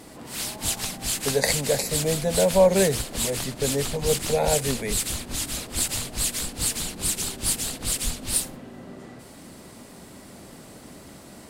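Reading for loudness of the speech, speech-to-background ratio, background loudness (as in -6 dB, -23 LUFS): -24.5 LUFS, 2.0 dB, -26.5 LUFS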